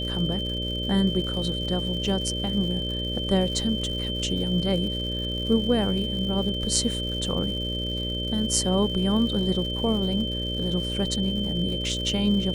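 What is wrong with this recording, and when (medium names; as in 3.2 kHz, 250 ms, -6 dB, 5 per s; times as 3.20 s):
buzz 60 Hz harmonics 10 -31 dBFS
crackle 190 per s -35 dBFS
whine 3.1 kHz -30 dBFS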